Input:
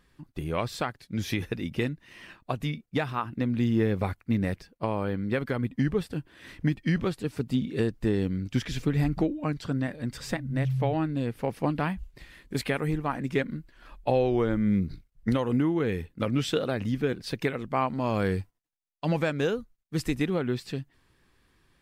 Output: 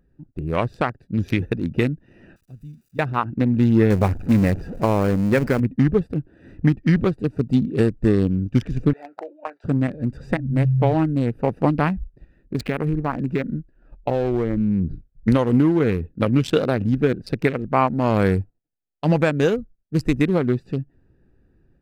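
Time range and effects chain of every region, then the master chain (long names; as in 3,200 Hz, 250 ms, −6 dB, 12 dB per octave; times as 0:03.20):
0:02.36–0:02.99: spike at every zero crossing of −22 dBFS + guitar amp tone stack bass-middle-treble 6-0-2
0:03.90–0:05.60: converter with a step at zero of −32.5 dBFS + mains-hum notches 60/120 Hz
0:08.93–0:09.64: high-pass filter 640 Hz 24 dB per octave + high-shelf EQ 3,200 Hz −11 dB + double-tracking delay 17 ms −11 dB
0:11.88–0:14.91: noise gate −45 dBFS, range −8 dB + downward compressor 4 to 1, threshold −25 dBFS + linearly interpolated sample-rate reduction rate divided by 2×
whole clip: adaptive Wiener filter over 41 samples; parametric band 3,400 Hz −4.5 dB 0.46 octaves; automatic gain control gain up to 5 dB; level +4 dB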